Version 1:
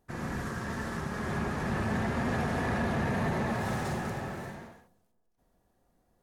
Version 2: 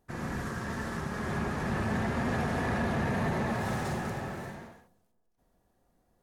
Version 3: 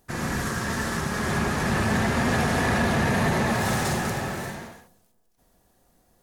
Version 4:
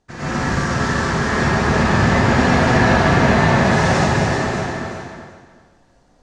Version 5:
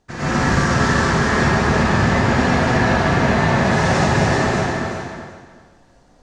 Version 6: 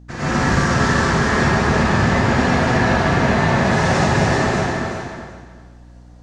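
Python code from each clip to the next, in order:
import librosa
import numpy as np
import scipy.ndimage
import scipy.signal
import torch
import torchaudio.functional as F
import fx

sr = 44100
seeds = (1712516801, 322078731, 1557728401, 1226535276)

y1 = x
y2 = fx.high_shelf(y1, sr, hz=2700.0, db=9.5)
y2 = y2 * librosa.db_to_amplitude(6.5)
y3 = scipy.signal.sosfilt(scipy.signal.butter(4, 6700.0, 'lowpass', fs=sr, output='sos'), y2)
y3 = fx.echo_feedback(y3, sr, ms=375, feedback_pct=19, wet_db=-6.0)
y3 = fx.rev_plate(y3, sr, seeds[0], rt60_s=1.1, hf_ratio=0.6, predelay_ms=85, drr_db=-10.0)
y3 = y3 * librosa.db_to_amplitude(-2.5)
y4 = fx.rider(y3, sr, range_db=3, speed_s=0.5)
y5 = fx.add_hum(y4, sr, base_hz=60, snr_db=25)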